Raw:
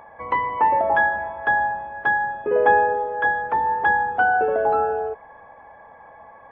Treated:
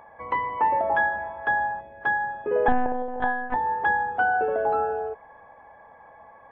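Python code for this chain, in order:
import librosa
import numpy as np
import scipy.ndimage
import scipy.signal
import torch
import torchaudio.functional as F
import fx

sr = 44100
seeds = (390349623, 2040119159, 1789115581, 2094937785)

y = fx.spec_box(x, sr, start_s=1.8, length_s=0.21, low_hz=700.0, high_hz=1800.0, gain_db=-11)
y = fx.lpc_monotone(y, sr, seeds[0], pitch_hz=250.0, order=8, at=(2.68, 3.56))
y = y * librosa.db_to_amplitude(-4.0)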